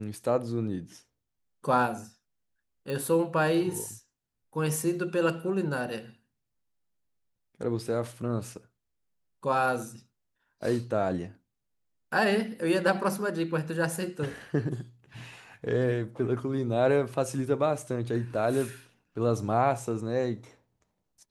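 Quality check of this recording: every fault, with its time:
0:02.90: click

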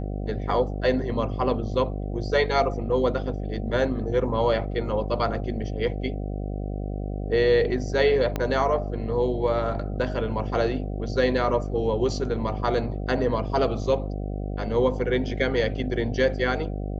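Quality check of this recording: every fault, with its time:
mains buzz 50 Hz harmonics 15 −30 dBFS
0:08.36: click −13 dBFS

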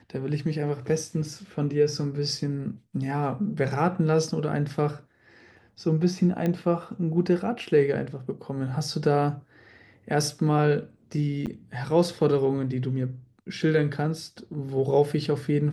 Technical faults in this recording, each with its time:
0:06.46: click −16 dBFS
0:11.46–0:11.47: drop-out 8.4 ms

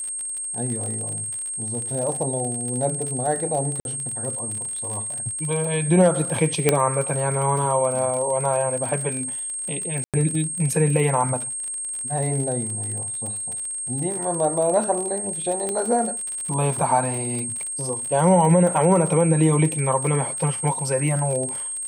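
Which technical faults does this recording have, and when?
surface crackle 45 per second −27 dBFS
whistle 8,500 Hz −27 dBFS
0:03.80–0:03.85: drop-out 51 ms
0:06.69: click −1 dBFS
0:10.04–0:10.14: drop-out 97 ms
0:15.69: click −13 dBFS

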